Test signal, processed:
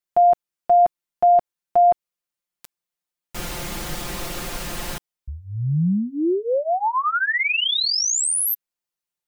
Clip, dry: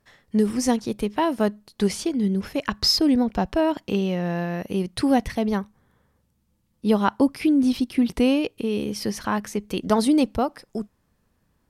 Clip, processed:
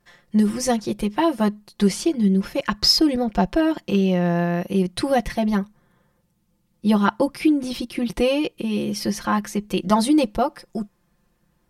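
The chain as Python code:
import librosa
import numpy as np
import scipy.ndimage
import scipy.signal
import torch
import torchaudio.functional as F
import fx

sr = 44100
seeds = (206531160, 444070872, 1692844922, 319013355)

y = x + 0.91 * np.pad(x, (int(5.7 * sr / 1000.0), 0))[:len(x)]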